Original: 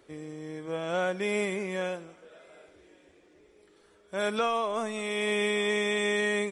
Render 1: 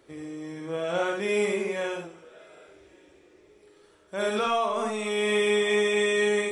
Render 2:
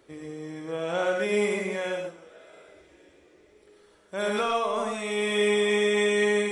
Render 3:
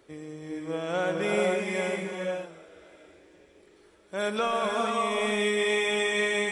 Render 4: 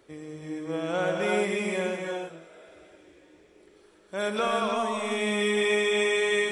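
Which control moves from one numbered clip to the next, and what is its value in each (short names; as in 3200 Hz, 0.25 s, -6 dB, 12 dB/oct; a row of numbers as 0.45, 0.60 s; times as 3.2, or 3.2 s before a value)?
non-linear reverb, gate: 0.1, 0.15, 0.53, 0.36 s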